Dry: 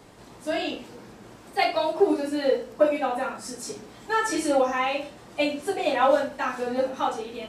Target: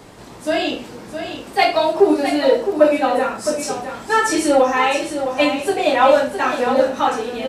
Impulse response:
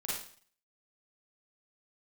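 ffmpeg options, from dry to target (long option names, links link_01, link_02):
-filter_complex "[0:a]asplit=2[link_01][link_02];[link_02]asoftclip=type=tanh:threshold=-18.5dB,volume=-8dB[link_03];[link_01][link_03]amix=inputs=2:normalize=0,aecho=1:1:662:0.376,volume=5.5dB"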